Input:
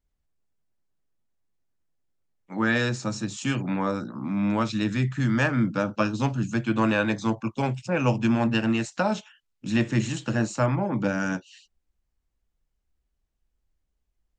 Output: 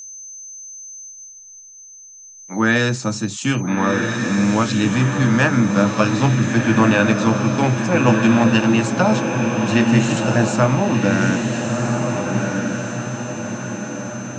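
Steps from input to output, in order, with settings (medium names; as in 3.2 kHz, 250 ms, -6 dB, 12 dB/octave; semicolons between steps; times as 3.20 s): whistle 6.2 kHz -40 dBFS; echo that smears into a reverb 1377 ms, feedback 52%, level -3.5 dB; trim +7 dB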